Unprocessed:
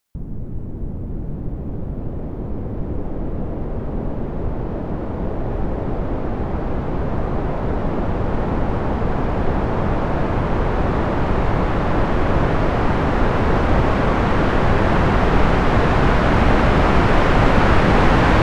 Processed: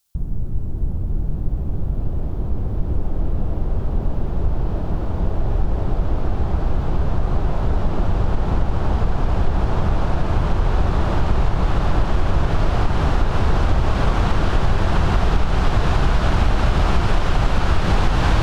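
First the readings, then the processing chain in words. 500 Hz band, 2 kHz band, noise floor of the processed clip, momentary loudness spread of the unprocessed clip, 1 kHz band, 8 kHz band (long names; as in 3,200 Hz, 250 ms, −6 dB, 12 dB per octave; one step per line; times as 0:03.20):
−6.5 dB, −6.5 dB, −24 dBFS, 13 LU, −5.0 dB, can't be measured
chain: octave-band graphic EQ 125/250/500/1,000/2,000 Hz −4/−10/−9/−5/−10 dB
downward compressor, threshold −19 dBFS, peak gain reduction 9 dB
level +7.5 dB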